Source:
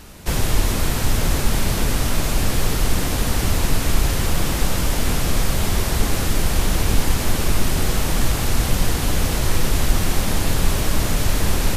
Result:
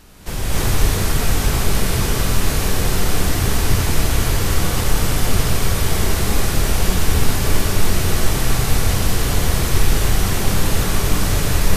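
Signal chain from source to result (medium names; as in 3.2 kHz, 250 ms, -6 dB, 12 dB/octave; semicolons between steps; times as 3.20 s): gated-style reverb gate 330 ms rising, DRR -7 dB; trim -5.5 dB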